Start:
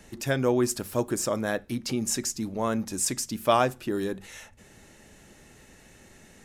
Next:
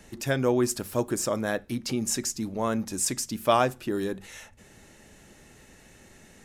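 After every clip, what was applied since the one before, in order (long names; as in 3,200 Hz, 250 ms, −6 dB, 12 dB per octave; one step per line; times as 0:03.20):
floating-point word with a short mantissa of 8 bits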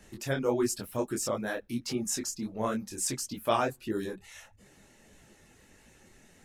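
reverb reduction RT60 0.64 s
micro pitch shift up and down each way 53 cents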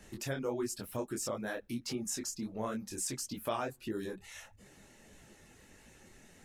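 downward compressor 2 to 1, threshold −38 dBFS, peak gain reduction 9.5 dB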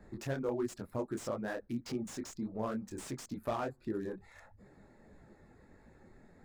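adaptive Wiener filter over 15 samples
slew-rate limiting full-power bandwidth 26 Hz
level +1 dB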